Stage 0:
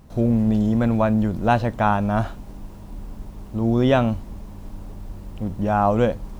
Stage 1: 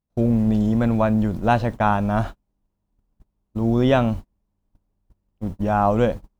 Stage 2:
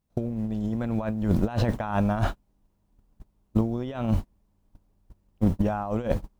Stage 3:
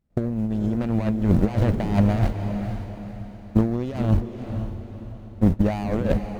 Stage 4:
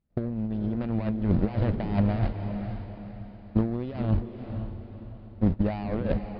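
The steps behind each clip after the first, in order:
gate -27 dBFS, range -37 dB
negative-ratio compressor -24 dBFS, ratio -0.5
median filter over 41 samples; diffused feedback echo 0.488 s, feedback 43%, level -7.5 dB; gain +4.5 dB
air absorption 58 m; downsampling 11025 Hz; gain -5 dB

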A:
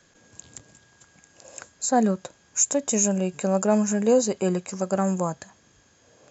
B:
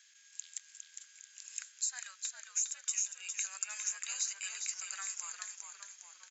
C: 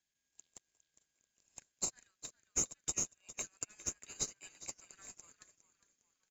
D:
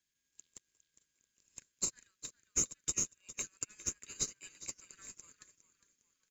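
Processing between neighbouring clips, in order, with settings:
inverse Chebyshev high-pass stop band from 430 Hz, stop band 70 dB; compressor 6:1, threshold -32 dBFS, peak gain reduction 15 dB; on a send: frequency-shifting echo 0.407 s, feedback 46%, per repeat -83 Hz, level -6 dB
in parallel at -11 dB: sample-and-hold 26×; on the sum: upward expander 2.5:1, over -47 dBFS; gain +1 dB
bell 740 Hz -14 dB 0.55 oct; gain +2 dB

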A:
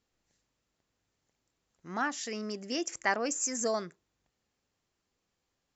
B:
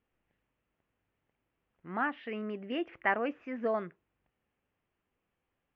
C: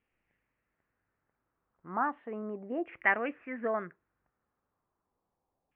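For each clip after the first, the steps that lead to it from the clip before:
steep low-pass 3000 Hz 48 dB/oct
LFO low-pass saw down 0.35 Hz 780–2500 Hz; gain -2 dB

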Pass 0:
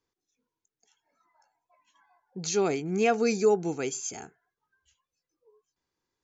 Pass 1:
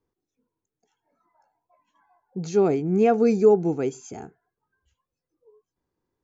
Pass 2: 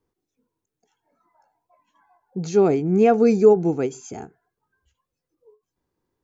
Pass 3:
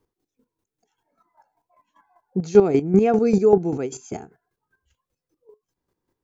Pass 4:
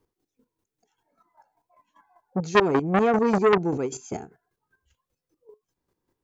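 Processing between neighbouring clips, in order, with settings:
tilt shelf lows +9.5 dB, about 1400 Hz; gain -1.5 dB
ending taper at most 280 dB/s; gain +3 dB
chopper 5.1 Hz, depth 65%, duty 25%; gain +5.5 dB
core saturation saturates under 1700 Hz

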